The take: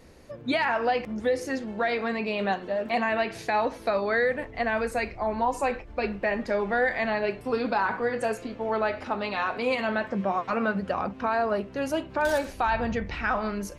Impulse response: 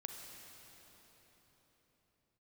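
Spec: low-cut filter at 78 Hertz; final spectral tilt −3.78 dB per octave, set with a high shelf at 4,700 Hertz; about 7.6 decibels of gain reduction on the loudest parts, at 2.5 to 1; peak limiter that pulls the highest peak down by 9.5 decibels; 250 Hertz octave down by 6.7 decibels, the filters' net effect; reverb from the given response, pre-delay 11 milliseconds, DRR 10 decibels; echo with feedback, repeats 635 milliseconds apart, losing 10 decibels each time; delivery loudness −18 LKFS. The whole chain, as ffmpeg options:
-filter_complex "[0:a]highpass=78,equalizer=frequency=250:width_type=o:gain=-8,highshelf=frequency=4700:gain=5,acompressor=threshold=-33dB:ratio=2.5,alimiter=level_in=3dB:limit=-24dB:level=0:latency=1,volume=-3dB,aecho=1:1:635|1270|1905|2540:0.316|0.101|0.0324|0.0104,asplit=2[link_01][link_02];[1:a]atrim=start_sample=2205,adelay=11[link_03];[link_02][link_03]afir=irnorm=-1:irlink=0,volume=-7.5dB[link_04];[link_01][link_04]amix=inputs=2:normalize=0,volume=18dB"

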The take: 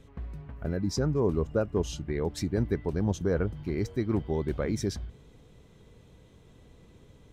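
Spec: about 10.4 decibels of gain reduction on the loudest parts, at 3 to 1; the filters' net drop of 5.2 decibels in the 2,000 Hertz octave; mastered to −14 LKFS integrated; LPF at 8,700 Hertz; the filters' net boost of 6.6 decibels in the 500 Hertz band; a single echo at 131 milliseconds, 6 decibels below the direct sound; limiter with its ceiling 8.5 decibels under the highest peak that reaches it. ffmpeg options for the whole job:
ffmpeg -i in.wav -af "lowpass=8700,equalizer=frequency=500:width_type=o:gain=8.5,equalizer=frequency=2000:width_type=o:gain=-8,acompressor=threshold=-31dB:ratio=3,alimiter=level_in=3.5dB:limit=-24dB:level=0:latency=1,volume=-3.5dB,aecho=1:1:131:0.501,volume=23dB" out.wav

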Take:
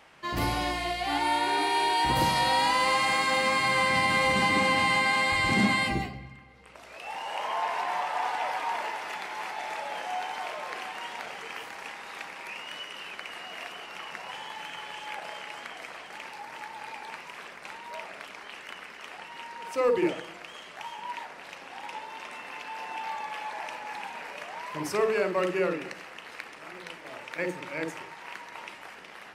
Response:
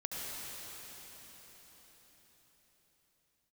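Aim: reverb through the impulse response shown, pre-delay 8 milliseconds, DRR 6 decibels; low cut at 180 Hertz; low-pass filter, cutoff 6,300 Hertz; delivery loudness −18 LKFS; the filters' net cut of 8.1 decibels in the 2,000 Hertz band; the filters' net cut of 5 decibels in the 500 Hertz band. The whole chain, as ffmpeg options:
-filter_complex "[0:a]highpass=180,lowpass=6300,equalizer=frequency=500:width_type=o:gain=-5.5,equalizer=frequency=2000:width_type=o:gain=-9,asplit=2[link_01][link_02];[1:a]atrim=start_sample=2205,adelay=8[link_03];[link_02][link_03]afir=irnorm=-1:irlink=0,volume=-9dB[link_04];[link_01][link_04]amix=inputs=2:normalize=0,volume=15dB"

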